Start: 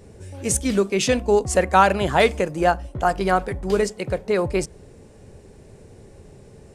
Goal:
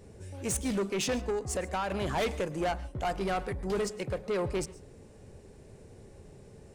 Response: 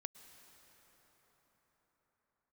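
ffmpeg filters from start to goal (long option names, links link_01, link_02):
-filter_complex "[0:a]asettb=1/sr,asplit=3[link_01][link_02][link_03];[link_01]atrim=end=1.304[link_04];[link_02]atrim=start=1.3:end=1.92,asetpts=PTS-STARTPTS,afade=type=in:duration=0.004:curve=qsin,afade=type=out:start_time=0.616:duration=0.004:curve=qsin,acompressor=threshold=-21dB:ratio=3[link_05];[link_03]atrim=start=1.916[link_06];[link_04][link_05]acrossfade=duration=0.004:curve1=hsin:curve2=qsin[link_07];[link_07][link_06]acrossfade=duration=0.004:curve1=qsin:curve2=hsin,asoftclip=type=tanh:threshold=-20dB[link_08];[1:a]atrim=start_sample=2205,atrim=end_sample=6615[link_09];[link_08][link_09]afir=irnorm=-1:irlink=0,volume=-1dB"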